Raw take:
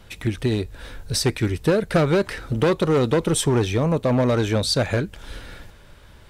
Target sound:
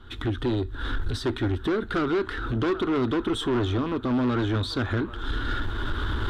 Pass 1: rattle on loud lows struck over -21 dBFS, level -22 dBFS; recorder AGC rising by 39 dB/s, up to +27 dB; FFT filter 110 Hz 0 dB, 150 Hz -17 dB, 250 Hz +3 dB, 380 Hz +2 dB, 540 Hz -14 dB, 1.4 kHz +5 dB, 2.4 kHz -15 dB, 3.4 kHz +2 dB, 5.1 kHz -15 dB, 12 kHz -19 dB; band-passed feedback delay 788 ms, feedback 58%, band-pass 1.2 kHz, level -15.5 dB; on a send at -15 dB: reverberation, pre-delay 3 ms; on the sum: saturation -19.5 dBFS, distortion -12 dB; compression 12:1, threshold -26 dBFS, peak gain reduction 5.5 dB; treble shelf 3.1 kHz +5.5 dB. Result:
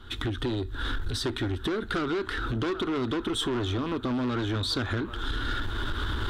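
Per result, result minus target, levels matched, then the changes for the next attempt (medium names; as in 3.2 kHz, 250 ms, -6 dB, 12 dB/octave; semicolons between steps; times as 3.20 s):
8 kHz band +7.5 dB; compression: peak gain reduction +5.5 dB
change: treble shelf 3.1 kHz -2.5 dB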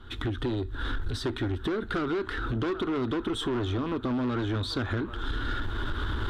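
compression: peak gain reduction +5.5 dB
remove: compression 12:1, threshold -26 dBFS, peak gain reduction 5.5 dB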